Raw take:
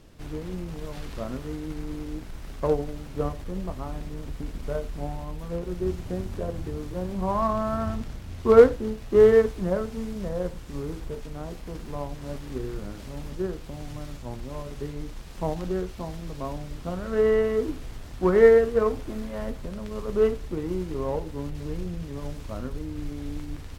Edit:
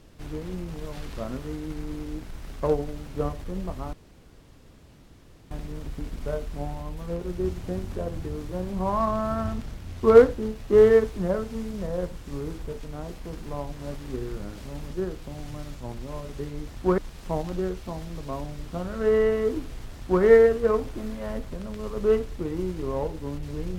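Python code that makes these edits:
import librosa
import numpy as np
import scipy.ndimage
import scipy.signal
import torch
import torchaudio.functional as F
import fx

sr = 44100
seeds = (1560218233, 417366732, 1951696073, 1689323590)

y = fx.edit(x, sr, fx.insert_room_tone(at_s=3.93, length_s=1.58),
    fx.duplicate(start_s=18.05, length_s=0.3, to_s=15.1), tone=tone)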